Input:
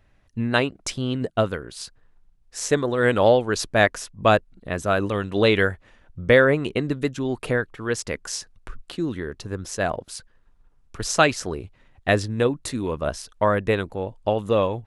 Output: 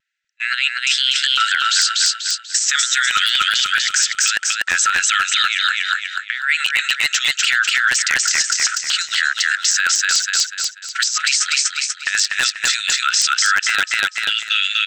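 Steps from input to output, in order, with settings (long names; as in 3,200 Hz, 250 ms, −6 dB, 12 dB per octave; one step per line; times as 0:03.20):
brick-wall band-pass 1,300–8,300 Hz
noise gate −50 dBFS, range −34 dB
high-shelf EQ 3,700 Hz +9 dB
compressor whose output falls as the input rises −29 dBFS, ratio −0.5
tape wow and flutter 60 cents
wave folding −16 dBFS
repeating echo 244 ms, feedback 36%, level −4 dB
boost into a limiter +25 dB
level −5 dB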